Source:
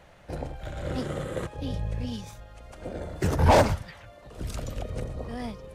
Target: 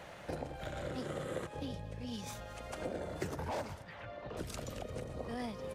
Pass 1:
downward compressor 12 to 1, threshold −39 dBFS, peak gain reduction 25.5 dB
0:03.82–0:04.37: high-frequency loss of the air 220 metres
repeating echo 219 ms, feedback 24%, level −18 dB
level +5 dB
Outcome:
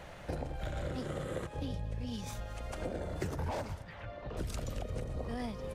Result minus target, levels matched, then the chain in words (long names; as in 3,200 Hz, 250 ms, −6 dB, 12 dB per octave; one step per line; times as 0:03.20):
125 Hz band +3.5 dB
downward compressor 12 to 1, threshold −39 dBFS, peak gain reduction 25.5 dB
high-pass filter 170 Hz 6 dB per octave
0:03.82–0:04.37: high-frequency loss of the air 220 metres
repeating echo 219 ms, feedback 24%, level −18 dB
level +5 dB